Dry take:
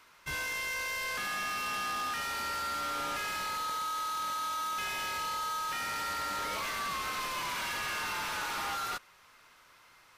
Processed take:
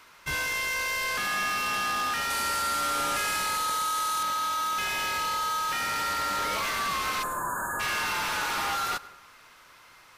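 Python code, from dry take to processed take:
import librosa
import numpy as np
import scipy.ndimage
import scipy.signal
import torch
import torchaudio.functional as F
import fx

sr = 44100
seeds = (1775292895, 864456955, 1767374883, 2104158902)

y = fx.peak_eq(x, sr, hz=9600.0, db=7.5, octaves=1.0, at=(2.3, 4.23))
y = fx.brickwall_bandstop(y, sr, low_hz=1800.0, high_hz=6500.0, at=(7.22, 7.79), fade=0.02)
y = fx.rev_plate(y, sr, seeds[0], rt60_s=0.8, hf_ratio=0.4, predelay_ms=90, drr_db=18.0)
y = F.gain(torch.from_numpy(y), 6.0).numpy()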